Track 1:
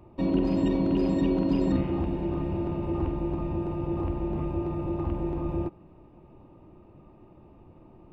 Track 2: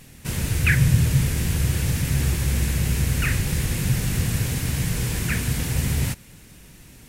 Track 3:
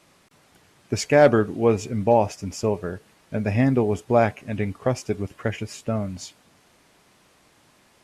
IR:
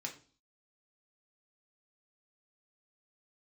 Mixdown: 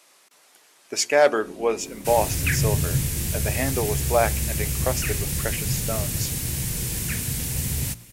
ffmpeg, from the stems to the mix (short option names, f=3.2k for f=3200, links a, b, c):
-filter_complex "[0:a]adelay=1250,volume=-18dB[a];[1:a]adynamicequalizer=threshold=0.00794:dfrequency=1400:dqfactor=0.84:tfrequency=1400:tqfactor=0.84:attack=5:release=100:ratio=0.375:range=2:mode=cutabove:tftype=bell,adelay=1800,volume=-4.5dB[b];[2:a]highpass=440,volume=-1dB,asplit=2[c][d];[d]volume=-18dB[e];[3:a]atrim=start_sample=2205[f];[e][f]afir=irnorm=-1:irlink=0[g];[a][b][c][g]amix=inputs=4:normalize=0,highshelf=f=4.7k:g=10,bandreject=f=58.66:t=h:w=4,bandreject=f=117.32:t=h:w=4,bandreject=f=175.98:t=h:w=4,bandreject=f=234.64:t=h:w=4,bandreject=f=293.3:t=h:w=4,bandreject=f=351.96:t=h:w=4"